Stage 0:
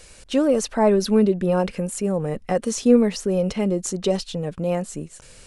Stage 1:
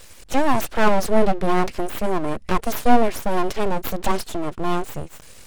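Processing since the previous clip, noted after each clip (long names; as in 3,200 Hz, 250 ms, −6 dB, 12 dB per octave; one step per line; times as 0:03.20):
full-wave rectification
level +3.5 dB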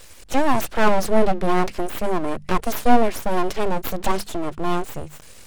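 mains-hum notches 50/100/150/200 Hz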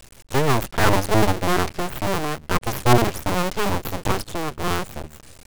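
sub-harmonics by changed cycles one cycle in 2, muted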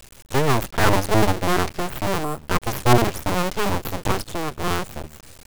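gain on a spectral selection 0:02.24–0:02.48, 1,400–7,200 Hz −11 dB
bit-depth reduction 8 bits, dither none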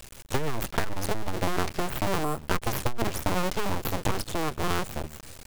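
saturating transformer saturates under 140 Hz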